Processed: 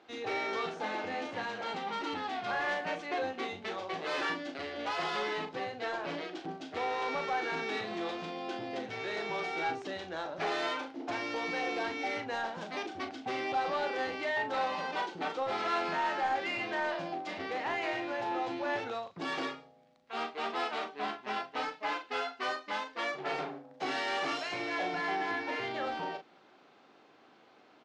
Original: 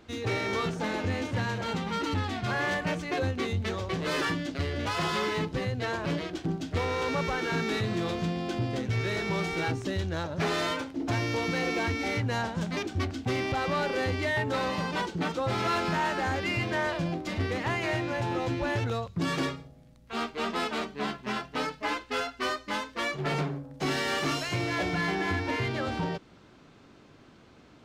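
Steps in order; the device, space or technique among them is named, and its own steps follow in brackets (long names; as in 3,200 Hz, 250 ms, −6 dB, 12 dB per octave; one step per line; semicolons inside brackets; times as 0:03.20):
intercom (band-pass filter 370–4,700 Hz; parametric band 770 Hz +8 dB 0.21 octaves; soft clipping −20.5 dBFS, distortion −22 dB; double-tracking delay 38 ms −8 dB)
level −3.5 dB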